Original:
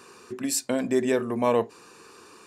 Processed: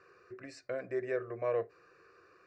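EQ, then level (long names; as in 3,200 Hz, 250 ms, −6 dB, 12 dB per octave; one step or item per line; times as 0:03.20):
low-pass filter 4,100 Hz 24 dB per octave
notch filter 430 Hz, Q 12
phaser with its sweep stopped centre 900 Hz, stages 6
−7.5 dB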